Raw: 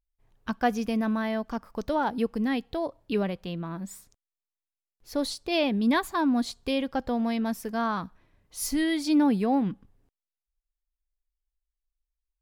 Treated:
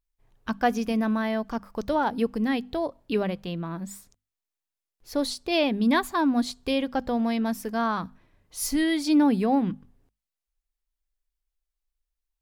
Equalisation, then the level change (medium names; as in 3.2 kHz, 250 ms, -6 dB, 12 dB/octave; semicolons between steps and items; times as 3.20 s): hum notches 50/100/150/200/250 Hz; +2.0 dB